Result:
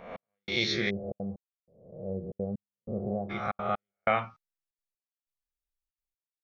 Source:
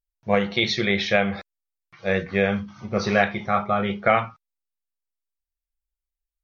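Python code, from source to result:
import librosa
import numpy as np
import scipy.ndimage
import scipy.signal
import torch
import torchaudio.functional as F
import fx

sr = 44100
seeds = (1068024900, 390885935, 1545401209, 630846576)

y = fx.spec_swells(x, sr, rise_s=0.76)
y = fx.step_gate(y, sr, bpm=188, pattern='xx....xxxxxxxx.', floor_db=-60.0, edge_ms=4.5)
y = fx.gaussian_blur(y, sr, sigma=15.0, at=(0.89, 3.29), fade=0.02)
y = F.gain(torch.from_numpy(y), -8.5).numpy()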